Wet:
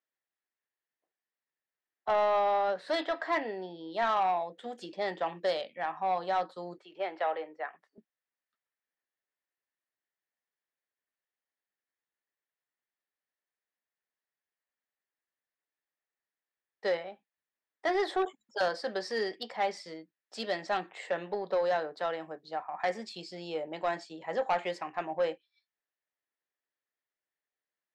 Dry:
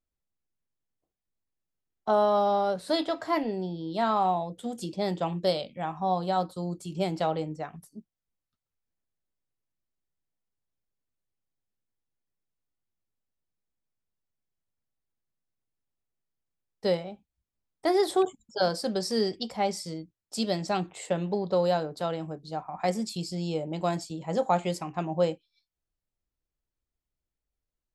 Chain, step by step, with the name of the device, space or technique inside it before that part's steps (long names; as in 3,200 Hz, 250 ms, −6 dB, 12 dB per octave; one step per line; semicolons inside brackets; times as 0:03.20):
intercom (band-pass filter 470–3,500 Hz; parametric band 1,800 Hz +10.5 dB 0.37 octaves; soft clipping −21 dBFS, distortion −16 dB)
0:06.78–0:07.98: three-way crossover with the lows and the highs turned down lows −23 dB, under 330 Hz, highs −21 dB, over 3,600 Hz